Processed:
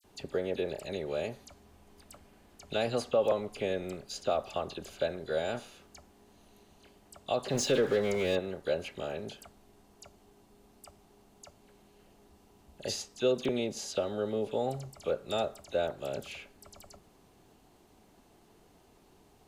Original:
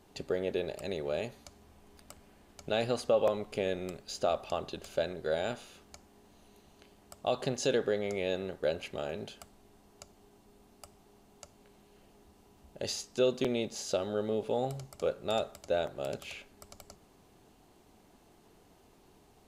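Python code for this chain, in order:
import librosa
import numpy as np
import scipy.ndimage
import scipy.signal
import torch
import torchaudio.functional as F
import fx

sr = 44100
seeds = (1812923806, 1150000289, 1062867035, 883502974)

y = fx.power_curve(x, sr, exponent=0.7, at=(7.49, 8.35))
y = fx.dispersion(y, sr, late='lows', ms=43.0, hz=2900.0)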